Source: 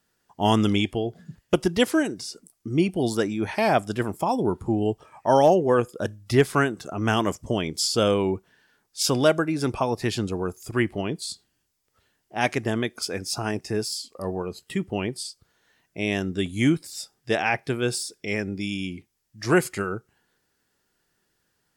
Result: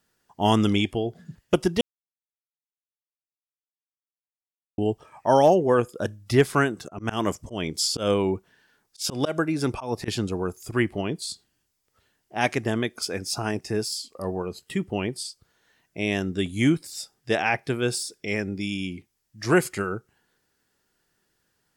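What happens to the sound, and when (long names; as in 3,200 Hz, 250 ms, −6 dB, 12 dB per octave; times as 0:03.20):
0:01.81–0:04.78: silence
0:06.81–0:10.08: volume swells 135 ms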